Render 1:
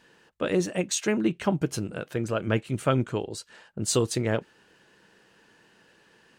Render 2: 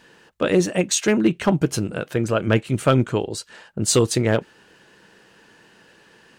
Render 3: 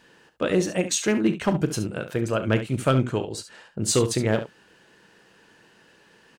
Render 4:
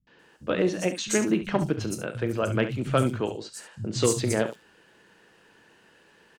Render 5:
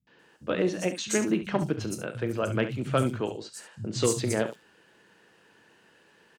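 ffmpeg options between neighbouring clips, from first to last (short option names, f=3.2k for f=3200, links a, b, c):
-af "asoftclip=type=hard:threshold=-15dB,volume=7dB"
-af "aecho=1:1:37|69:0.211|0.266,volume=-4dB"
-filter_complex "[0:a]acrossover=split=150|5300[a][b][c];[b]adelay=70[d];[c]adelay=190[e];[a][d][e]amix=inputs=3:normalize=0,volume=-1.5dB"
-af "highpass=70,volume=-2dB"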